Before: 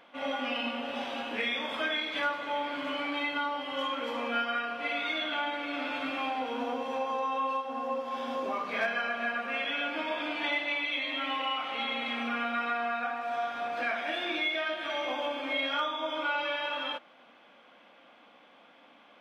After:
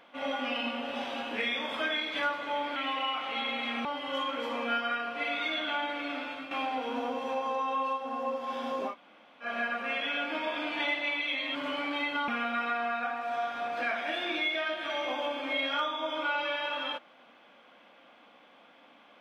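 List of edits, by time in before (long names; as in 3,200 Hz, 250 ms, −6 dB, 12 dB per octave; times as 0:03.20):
0:02.76–0:03.49: swap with 0:11.19–0:12.28
0:05.68–0:06.15: fade out, to −10.5 dB
0:08.55–0:09.09: fill with room tone, crossfade 0.10 s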